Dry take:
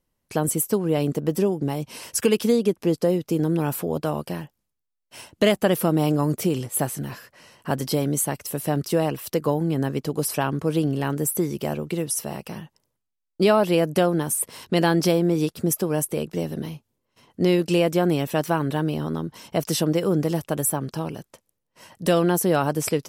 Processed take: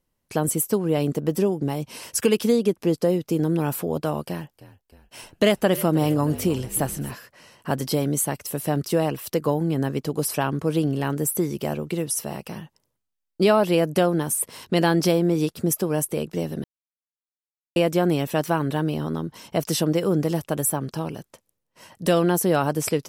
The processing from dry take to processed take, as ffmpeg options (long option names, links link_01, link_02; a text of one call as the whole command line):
ffmpeg -i in.wav -filter_complex "[0:a]asettb=1/sr,asplit=3[link_01][link_02][link_03];[link_01]atrim=end=4.264[link_04];[link_02]atrim=start=4.26:end=7.12,asetpts=PTS-STARTPTS,afade=type=in:duration=0.004:curve=qsin,afade=type=out:start_time=2.856:duration=0.004:curve=qsin,asplit=6[link_05][link_06][link_07][link_08][link_09][link_10];[link_06]adelay=311,afreqshift=-52,volume=-17dB[link_11];[link_07]adelay=622,afreqshift=-104,volume=-21.9dB[link_12];[link_08]adelay=933,afreqshift=-156,volume=-26.8dB[link_13];[link_09]adelay=1244,afreqshift=-208,volume=-31.6dB[link_14];[link_10]adelay=1555,afreqshift=-260,volume=-36.5dB[link_15];[link_05][link_11][link_12][link_13][link_14][link_15]amix=inputs=6:normalize=0,atrim=end_sample=126126[link_16];[link_03]atrim=start=7.116[link_17];[link_04][link_16]acrossfade=duration=0.004:curve1=hsin:curve2=qsin[link_18];[link_18][link_17]acrossfade=duration=0.004:curve1=qsin:curve2=hsin,asplit=3[link_19][link_20][link_21];[link_19]atrim=end=16.64,asetpts=PTS-STARTPTS,afade=type=out:start_time=16.636:duration=0.004:curve=hsin[link_22];[link_20]atrim=start=16.64:end=17.76,asetpts=PTS-STARTPTS,volume=0[link_23];[link_21]atrim=start=17.76,asetpts=PTS-STARTPTS,afade=type=in:duration=0.004:curve=hsin[link_24];[link_22][link_23][link_24]concat=n=3:v=0:a=1" out.wav